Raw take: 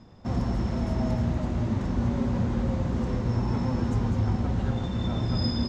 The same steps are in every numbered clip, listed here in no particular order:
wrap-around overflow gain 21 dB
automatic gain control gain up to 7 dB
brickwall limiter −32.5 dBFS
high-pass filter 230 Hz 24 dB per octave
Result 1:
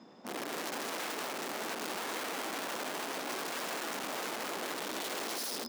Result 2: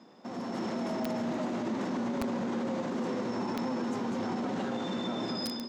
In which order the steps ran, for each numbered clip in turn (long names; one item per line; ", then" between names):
automatic gain control, then wrap-around overflow, then brickwall limiter, then high-pass filter
high-pass filter, then wrap-around overflow, then brickwall limiter, then automatic gain control